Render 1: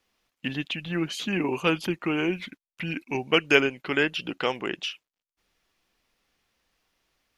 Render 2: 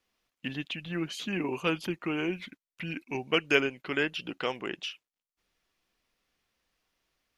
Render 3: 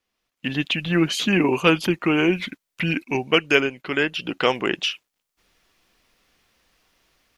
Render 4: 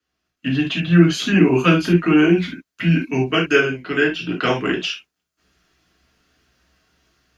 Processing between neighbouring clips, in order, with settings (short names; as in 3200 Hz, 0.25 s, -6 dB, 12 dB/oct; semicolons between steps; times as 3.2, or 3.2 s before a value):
notch 840 Hz, Q 23; gain -5 dB
AGC gain up to 15 dB; gain -1 dB
reverb, pre-delay 3 ms, DRR -2 dB; gain -11 dB